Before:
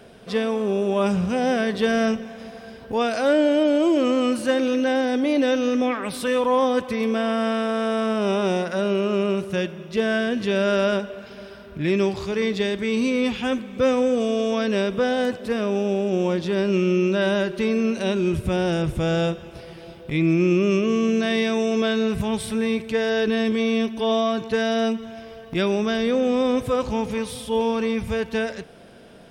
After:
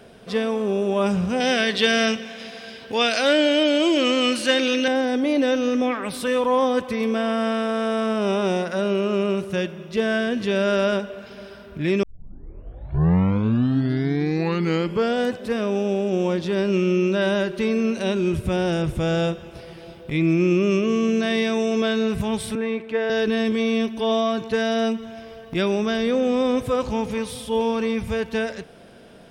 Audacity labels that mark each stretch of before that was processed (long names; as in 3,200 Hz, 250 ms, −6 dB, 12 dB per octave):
1.400000	4.880000	meter weighting curve D
12.030000	12.030000	tape start 3.28 s
22.550000	23.100000	three-way crossover with the lows and the highs turned down lows −15 dB, under 220 Hz, highs −17 dB, over 3,000 Hz